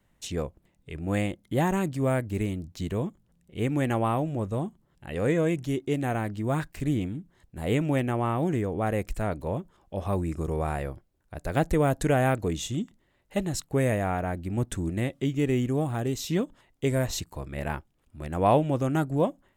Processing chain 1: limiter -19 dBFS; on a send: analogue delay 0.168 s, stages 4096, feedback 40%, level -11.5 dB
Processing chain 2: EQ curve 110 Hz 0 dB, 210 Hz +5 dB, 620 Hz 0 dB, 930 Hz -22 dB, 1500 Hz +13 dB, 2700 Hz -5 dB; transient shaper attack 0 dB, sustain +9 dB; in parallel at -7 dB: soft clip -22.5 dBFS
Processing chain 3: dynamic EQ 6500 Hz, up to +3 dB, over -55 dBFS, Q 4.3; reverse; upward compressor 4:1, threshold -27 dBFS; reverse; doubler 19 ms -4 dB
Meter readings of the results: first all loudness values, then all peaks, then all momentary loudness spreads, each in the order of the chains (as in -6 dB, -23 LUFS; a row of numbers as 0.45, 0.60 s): -30.0, -23.5, -27.0 LUFS; -16.5, -9.5, -6.0 dBFS; 9, 11, 11 LU